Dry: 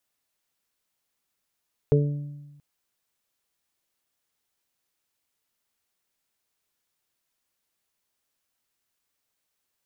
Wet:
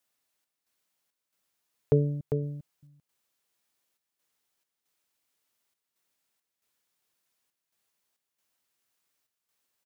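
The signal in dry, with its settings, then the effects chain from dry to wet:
additive tone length 0.68 s, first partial 145 Hz, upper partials -9/1/-17 dB, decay 1.21 s, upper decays 0.90/0.38/0.72 s, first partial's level -16.5 dB
high-pass 110 Hz 6 dB/octave; trance gate "xx.xx.xx" 68 bpm -60 dB; delay 399 ms -6.5 dB

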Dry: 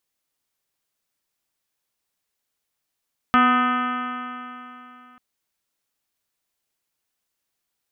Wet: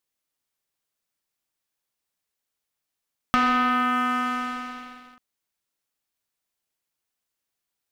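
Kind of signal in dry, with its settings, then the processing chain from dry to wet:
stretched partials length 1.84 s, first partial 246 Hz, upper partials -16.5/-6/-9/4/-6/-8.5/-12/-15/-15/-15.5/-19 dB, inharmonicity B 0.0016, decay 3.06 s, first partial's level -18 dB
waveshaping leveller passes 2; compression 5:1, threshold -20 dBFS

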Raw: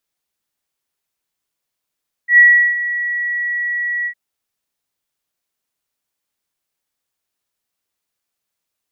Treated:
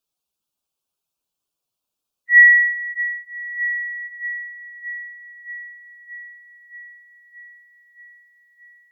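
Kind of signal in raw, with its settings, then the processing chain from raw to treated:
ADSR sine 1.93 kHz, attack 98 ms, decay 371 ms, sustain -14 dB, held 1.78 s, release 78 ms -3.5 dBFS
expander on every frequency bin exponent 1.5; on a send: feedback echo behind a low-pass 625 ms, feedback 70%, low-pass 1.8 kHz, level -7 dB

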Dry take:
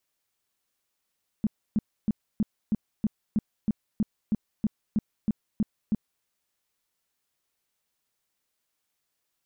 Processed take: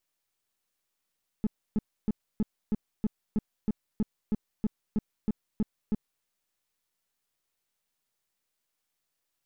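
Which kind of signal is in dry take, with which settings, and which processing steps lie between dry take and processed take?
tone bursts 214 Hz, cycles 6, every 0.32 s, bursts 15, -20 dBFS
partial rectifier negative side -7 dB

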